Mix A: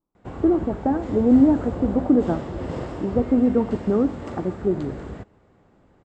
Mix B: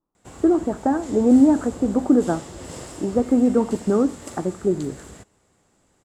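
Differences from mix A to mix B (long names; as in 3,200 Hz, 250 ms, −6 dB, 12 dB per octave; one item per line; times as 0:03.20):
background −9.0 dB
master: remove head-to-tape spacing loss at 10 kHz 37 dB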